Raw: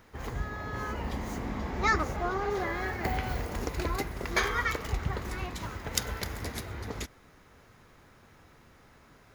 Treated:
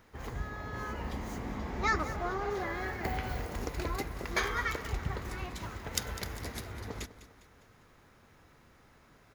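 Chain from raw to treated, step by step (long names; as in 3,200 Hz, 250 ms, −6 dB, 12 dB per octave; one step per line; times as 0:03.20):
repeating echo 202 ms, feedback 47%, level −15 dB
level −3.5 dB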